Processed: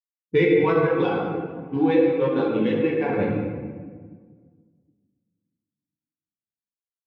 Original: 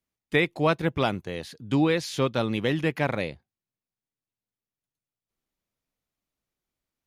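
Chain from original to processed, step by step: local Wiener filter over 41 samples; Bessel low-pass 9.4 kHz; level-controlled noise filter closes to 620 Hz, open at -19.5 dBFS; 0.61–3.10 s: high-pass 480 Hz 6 dB/octave; waveshaping leveller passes 1; comb of notches 620 Hz; reverberation RT60 2.5 s, pre-delay 6 ms, DRR -5.5 dB; loudness maximiser +8.5 dB; spectral contrast expander 1.5:1; trim -7 dB

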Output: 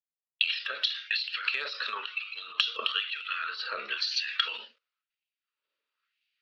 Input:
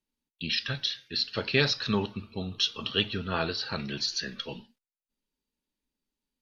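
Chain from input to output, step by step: recorder AGC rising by 20 dB/s; in parallel at -8 dB: hard clipper -27.5 dBFS, distortion -7 dB; on the sum: LFO high-pass sine 1 Hz 570–2400 Hz; cabinet simulation 450–4400 Hz, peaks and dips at 470 Hz +4 dB, 870 Hz -6 dB, 1.3 kHz +9 dB, 2.7 kHz +5 dB; compression 8:1, threshold -31 dBFS, peak gain reduction 14.5 dB; peaking EQ 760 Hz -14.5 dB 0.56 oct; transient shaper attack +6 dB, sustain +10 dB; three bands expanded up and down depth 100%

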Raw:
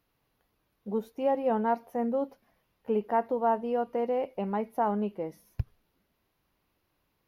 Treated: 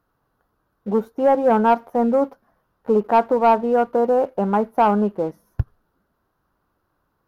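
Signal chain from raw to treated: resonant high shelf 1.8 kHz -7.5 dB, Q 3; waveshaping leveller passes 1; trim +7 dB

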